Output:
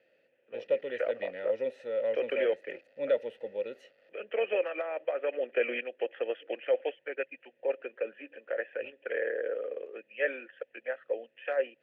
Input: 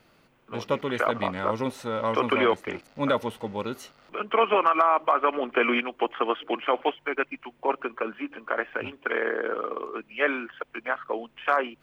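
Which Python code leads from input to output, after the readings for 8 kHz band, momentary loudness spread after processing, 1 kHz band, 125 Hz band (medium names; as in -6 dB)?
no reading, 11 LU, -21.0 dB, under -20 dB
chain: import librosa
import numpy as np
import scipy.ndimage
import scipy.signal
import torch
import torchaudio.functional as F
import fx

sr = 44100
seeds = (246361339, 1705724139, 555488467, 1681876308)

y = fx.vowel_filter(x, sr, vowel='e')
y = y * 10.0 ** (3.0 / 20.0)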